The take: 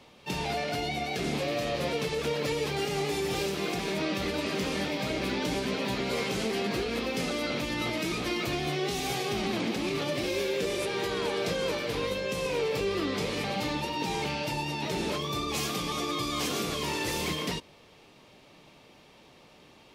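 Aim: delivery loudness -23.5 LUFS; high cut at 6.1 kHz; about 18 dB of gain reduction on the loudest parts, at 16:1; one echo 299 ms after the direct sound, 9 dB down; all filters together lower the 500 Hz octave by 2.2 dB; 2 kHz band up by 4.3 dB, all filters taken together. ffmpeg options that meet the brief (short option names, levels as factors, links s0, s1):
-af "lowpass=6100,equalizer=f=500:t=o:g=-3,equalizer=f=2000:t=o:g=5.5,acompressor=threshold=0.00562:ratio=16,aecho=1:1:299:0.355,volume=15.8"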